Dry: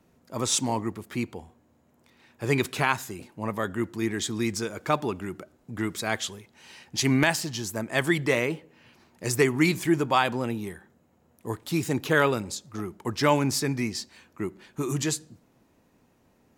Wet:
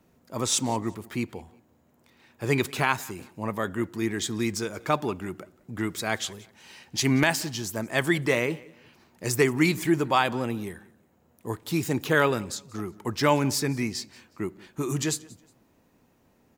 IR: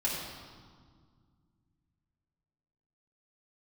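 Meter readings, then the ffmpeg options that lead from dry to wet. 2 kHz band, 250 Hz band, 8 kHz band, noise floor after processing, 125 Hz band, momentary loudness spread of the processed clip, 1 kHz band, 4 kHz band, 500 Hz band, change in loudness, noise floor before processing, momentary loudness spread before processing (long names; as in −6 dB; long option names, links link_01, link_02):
0.0 dB, 0.0 dB, 0.0 dB, −64 dBFS, 0.0 dB, 13 LU, 0.0 dB, 0.0 dB, 0.0 dB, 0.0 dB, −65 dBFS, 13 LU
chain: -af "equalizer=frequency=15000:width=6.5:gain=11.5,aecho=1:1:181|362:0.0708|0.0205"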